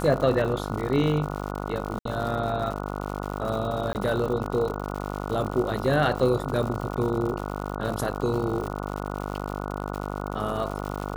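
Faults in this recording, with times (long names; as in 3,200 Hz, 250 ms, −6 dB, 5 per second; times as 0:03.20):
mains buzz 50 Hz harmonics 29 −32 dBFS
surface crackle 130 per second −31 dBFS
0:01.99–0:02.05: drop-out 63 ms
0:03.93–0:03.95: drop-out 19 ms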